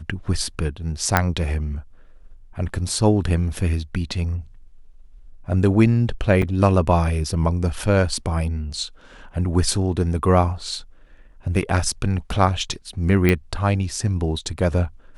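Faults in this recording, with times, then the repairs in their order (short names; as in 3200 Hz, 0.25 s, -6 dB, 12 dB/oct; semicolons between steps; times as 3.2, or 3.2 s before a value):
1.17 pop -2 dBFS
6.42–6.43 gap 5.1 ms
13.29 pop -6 dBFS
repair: de-click; interpolate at 6.42, 5.1 ms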